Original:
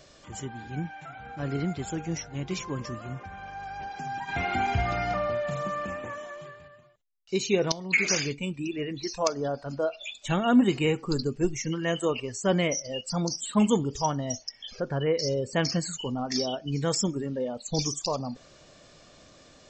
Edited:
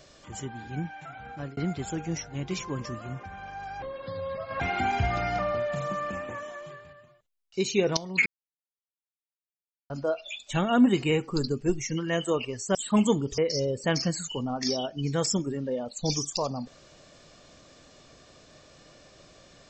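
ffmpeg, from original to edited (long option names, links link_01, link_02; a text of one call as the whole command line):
ffmpeg -i in.wav -filter_complex "[0:a]asplit=8[link_01][link_02][link_03][link_04][link_05][link_06][link_07][link_08];[link_01]atrim=end=1.57,asetpts=PTS-STARTPTS,afade=type=out:start_time=1.26:duration=0.31:curve=qsin[link_09];[link_02]atrim=start=1.57:end=3.824,asetpts=PTS-STARTPTS,afade=type=in:duration=0.004:curve=hsin[link_10];[link_03]atrim=start=3.82:end=4.35,asetpts=PTS-STARTPTS,asetrate=29988,aresample=44100,atrim=end_sample=34372,asetpts=PTS-STARTPTS[link_11];[link_04]atrim=start=4.346:end=8.01,asetpts=PTS-STARTPTS,afade=type=out:start_time=3.66:duration=0.004:curve=hsin[link_12];[link_05]atrim=start=8.01:end=9.65,asetpts=PTS-STARTPTS,volume=0[link_13];[link_06]atrim=start=9.65:end=12.502,asetpts=PTS-STARTPTS,afade=type=in:duration=0.004:curve=hsin[link_14];[link_07]atrim=start=13.378:end=14.012[link_15];[link_08]atrim=start=15.068[link_16];[link_09][link_10]concat=n=2:v=0:a=1[link_17];[link_17][link_11]acrossfade=duration=0.004:curve1=hsin:curve2=hsin[link_18];[link_12][link_13][link_14]concat=n=3:v=0:a=1[link_19];[link_18][link_19]acrossfade=duration=0.004:curve1=hsin:curve2=hsin[link_20];[link_20][link_15]acrossfade=duration=0.004:curve1=hsin:curve2=hsin[link_21];[link_21][link_16]acrossfade=duration=0.004:curve1=hsin:curve2=hsin" out.wav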